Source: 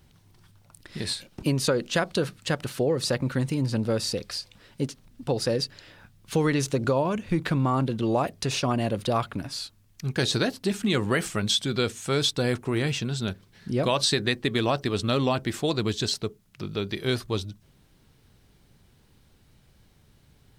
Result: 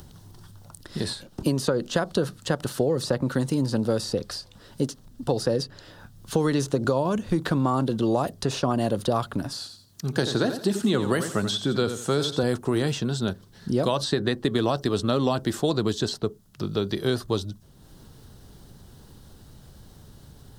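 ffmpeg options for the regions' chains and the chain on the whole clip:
ffmpeg -i in.wav -filter_complex "[0:a]asettb=1/sr,asplit=3[link_01][link_02][link_03];[link_01]atrim=end=9.524[link_04];[link_02]atrim=start=9.52:end=12.43,asetpts=PTS-STARTPTS,afade=type=in:duration=0.004:curve=qsin,afade=type=out:start_time=2.906:duration=0.004:curve=qsin,highpass=91,aecho=1:1:86|172|258:0.282|0.0705|0.0176,atrim=end_sample=128331[link_05];[link_03]atrim=start=12.426[link_06];[link_04][link_05]acrossfade=duration=0.004:curve1=hsin:curve2=qsin[link_07];[link_07][link_06]acrossfade=duration=0.004:curve1=qsin:curve2=hsin,acompressor=mode=upward:threshold=-45dB:ratio=2.5,equalizer=frequency=2300:width=2.3:gain=-13,acrossover=split=190|2800[link_08][link_09][link_10];[link_08]acompressor=threshold=-37dB:ratio=4[link_11];[link_09]acompressor=threshold=-26dB:ratio=4[link_12];[link_10]acompressor=threshold=-41dB:ratio=4[link_13];[link_11][link_12][link_13]amix=inputs=3:normalize=0,volume=5.5dB" out.wav

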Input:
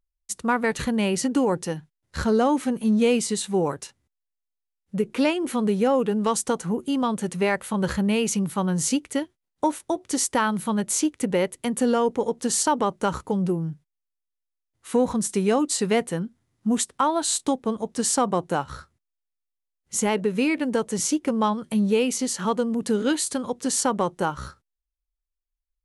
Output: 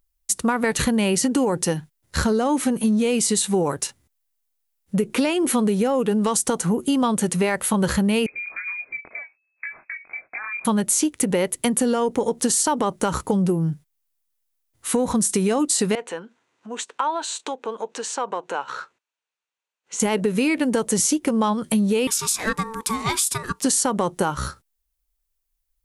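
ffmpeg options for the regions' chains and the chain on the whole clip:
ffmpeg -i in.wav -filter_complex "[0:a]asettb=1/sr,asplit=3[link_01][link_02][link_03];[link_01]atrim=end=8.264[link_04];[link_02]atrim=start=8.26:end=10.65,asetpts=PTS-STARTPTS,afade=type=in:duration=0.004:curve=qsin,afade=type=out:start_time=2.386:duration=0.004:curve=qsin,acompressor=threshold=-33dB:ratio=16:attack=3.2:release=140:knee=1:detection=peak,flanger=delay=19:depth=5.4:speed=2.9,lowpass=frequency=2200:width_type=q:width=0.5098,lowpass=frequency=2200:width_type=q:width=0.6013,lowpass=frequency=2200:width_type=q:width=0.9,lowpass=frequency=2200:width_type=q:width=2.563,afreqshift=-2600[link_05];[link_03]atrim=start=10.646[link_06];[link_04][link_05]acrossfade=duration=0.004:curve1=hsin:curve2=qsin[link_07];[link_07][link_06]acrossfade=duration=0.004:curve1=qsin:curve2=hsin,asettb=1/sr,asplit=3[link_08][link_09][link_10];[link_08]atrim=end=15.954[link_11];[link_09]atrim=start=15.95:end=20,asetpts=PTS-STARTPTS,afade=type=in:duration=0.004:curve=qsin,afade=type=out:start_time=4.046:duration=0.004:curve=qsin,acompressor=threshold=-38dB:ratio=2.5:attack=3.2:release=140:knee=1:detection=peak,highpass=430,equalizer=frequency=460:width_type=q:width=4:gain=6,equalizer=frequency=950:width_type=q:width=4:gain=7,equalizer=frequency=1500:width_type=q:width=4:gain=6,equalizer=frequency=2600:width_type=q:width=4:gain=7,equalizer=frequency=5100:width_type=q:width=4:gain=-7,lowpass=frequency=6500:width=0.5412,lowpass=frequency=6500:width=1.3066[link_12];[link_10]atrim=start=19.996[link_13];[link_11][link_12]acrossfade=duration=0.004:curve1=hsin:curve2=qsin[link_14];[link_14][link_13]acrossfade=duration=0.004:curve1=qsin:curve2=hsin,asettb=1/sr,asplit=3[link_15][link_16][link_17];[link_15]atrim=end=22.074[link_18];[link_16]atrim=start=22.07:end=23.64,asetpts=PTS-STARTPTS,afade=type=in:duration=0.004:curve=qsin,afade=type=out:start_time=1.566:duration=0.004:curve=qsin,highpass=560,aeval=exprs='val(0)*sin(2*PI*670*n/s)':channel_layout=same[link_19];[link_17]atrim=start=23.636[link_20];[link_18][link_19]acrossfade=duration=0.004:curve1=hsin:curve2=qsin[link_21];[link_21][link_20]acrossfade=duration=0.004:curve1=qsin:curve2=hsin,highshelf=frequency=8200:gain=11,alimiter=limit=-15dB:level=0:latency=1,acompressor=threshold=-25dB:ratio=6,volume=8dB" out.wav

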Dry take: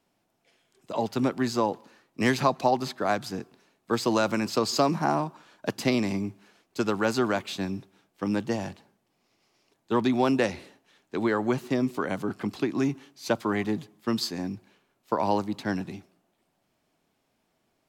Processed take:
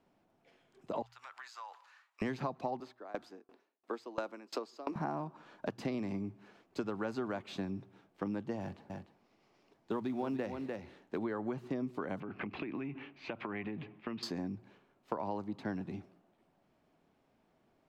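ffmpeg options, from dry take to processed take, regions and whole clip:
ffmpeg -i in.wav -filter_complex "[0:a]asettb=1/sr,asplit=3[link_01][link_02][link_03];[link_01]atrim=end=1.024[link_04];[link_02]atrim=start=1.02:end=2.22,asetpts=PTS-STARTPTS,afade=type=in:duration=0.004:curve=qsin,afade=type=out:start_time=1.196:duration=0.004:curve=qsin,highpass=frequency=1100:width=0.5412,highpass=frequency=1100:width=1.3066,equalizer=frequency=7100:width=6.6:gain=4.5,acompressor=threshold=-45dB:ratio=4:attack=3.2:release=140:knee=1:detection=peak[link_05];[link_03]atrim=start=2.216[link_06];[link_04][link_05]acrossfade=duration=0.004:curve1=hsin:curve2=qsin[link_07];[link_07][link_06]acrossfade=duration=0.004:curve1=qsin:curve2=hsin,asettb=1/sr,asplit=3[link_08][link_09][link_10];[link_08]atrim=end=2.804[link_11];[link_09]atrim=start=2.8:end=4.96,asetpts=PTS-STARTPTS,afade=type=in:duration=0.004:curve=qsin,afade=type=out:start_time=2.156:duration=0.004:curve=qsin,highpass=frequency=280:width=0.5412,highpass=frequency=280:width=1.3066,aeval=exprs='val(0)*pow(10,-29*if(lt(mod(2.9*n/s,1),2*abs(2.9)/1000),1-mod(2.9*n/s,1)/(2*abs(2.9)/1000),(mod(2.9*n/s,1)-2*abs(2.9)/1000)/(1-2*abs(2.9)/1000))/20)':channel_layout=same[link_12];[link_10]atrim=start=4.956[link_13];[link_11][link_12]acrossfade=duration=0.004:curve1=hsin:curve2=qsin[link_14];[link_14][link_13]acrossfade=duration=0.004:curve1=qsin:curve2=hsin,asettb=1/sr,asplit=3[link_15][link_16][link_17];[link_15]atrim=end=8.604[link_18];[link_16]atrim=start=8.6:end=11.18,asetpts=PTS-STARTPTS,afade=type=in:duration=0.004:curve=qsin,afade=type=out:start_time=2.576:duration=0.004:curve=qsin,acrusher=bits=6:mode=log:mix=0:aa=0.000001,aecho=1:1:298:0.282,atrim=end_sample=113778[link_19];[link_17]atrim=start=11.176[link_20];[link_18][link_19]acrossfade=duration=0.004:curve1=hsin:curve2=qsin[link_21];[link_21][link_20]acrossfade=duration=0.004:curve1=qsin:curve2=hsin,asettb=1/sr,asplit=3[link_22][link_23][link_24];[link_22]atrim=end=12.204[link_25];[link_23]atrim=start=12.2:end=14.23,asetpts=PTS-STARTPTS,afade=type=in:duration=0.004:curve=qsin,afade=type=out:start_time=2.026:duration=0.004:curve=qsin,acompressor=threshold=-35dB:ratio=10:attack=3.2:release=140:knee=1:detection=peak,lowpass=frequency=2500:width_type=q:width=4.2[link_26];[link_24]atrim=start=14.226[link_27];[link_25][link_26]acrossfade=duration=0.004:curve1=hsin:curve2=qsin[link_28];[link_28][link_27]acrossfade=duration=0.004:curve1=qsin:curve2=hsin,lowpass=frequency=1400:poles=1,bandreject=frequency=60:width_type=h:width=6,bandreject=frequency=120:width_type=h:width=6,acompressor=threshold=-39dB:ratio=4,volume=2.5dB" out.wav

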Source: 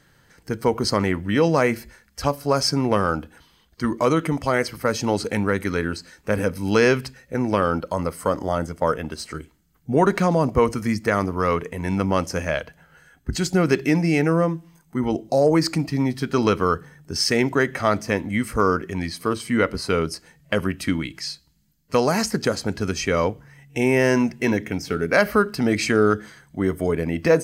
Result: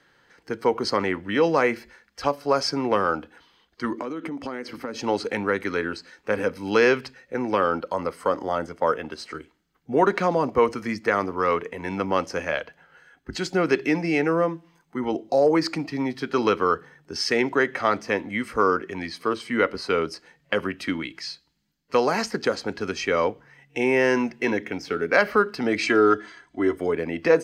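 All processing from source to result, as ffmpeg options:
ffmpeg -i in.wav -filter_complex "[0:a]asettb=1/sr,asplit=3[link_01][link_02][link_03];[link_01]atrim=end=3.974[link_04];[link_02]atrim=start=3.97:end=4.99,asetpts=PTS-STARTPTS,afade=type=in:duration=0.004:curve=qsin,afade=type=out:start_time=1.016:duration=0.004:curve=qsin,equalizer=frequency=260:width_type=o:width=0.86:gain=11.5,acompressor=threshold=-24dB:ratio=16:attack=3.2:release=140:knee=1:detection=peak[link_05];[link_03]atrim=start=4.986[link_06];[link_04][link_05]acrossfade=duration=0.004:curve1=hsin:curve2=qsin[link_07];[link_07][link_06]acrossfade=duration=0.004:curve1=qsin:curve2=hsin,asettb=1/sr,asplit=3[link_08][link_09][link_10];[link_08]atrim=end=25.834[link_11];[link_09]atrim=start=25.83:end=26.77,asetpts=PTS-STARTPTS,afade=type=in:duration=0.004:curve=qsin,afade=type=out:start_time=0.936:duration=0.004:curve=qsin,lowpass=frequency=10000:width=0.5412,lowpass=frequency=10000:width=1.3066,aecho=1:1:3:0.65,atrim=end_sample=41454[link_12];[link_10]atrim=start=26.766[link_13];[link_11][link_12]acrossfade=duration=0.004:curve1=hsin:curve2=qsin[link_14];[link_14][link_13]acrossfade=duration=0.004:curve1=qsin:curve2=hsin,acrossover=split=260 5200:gain=0.2 1 0.178[link_15][link_16][link_17];[link_15][link_16][link_17]amix=inputs=3:normalize=0,bandreject=frequency=630:width=14" out.wav

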